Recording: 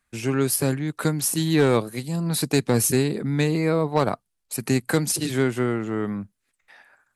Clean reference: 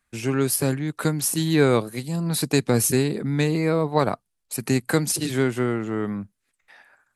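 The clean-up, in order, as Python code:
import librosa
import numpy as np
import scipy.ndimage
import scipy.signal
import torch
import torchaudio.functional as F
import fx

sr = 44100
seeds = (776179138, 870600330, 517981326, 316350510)

y = fx.fix_declip(x, sr, threshold_db=-10.5)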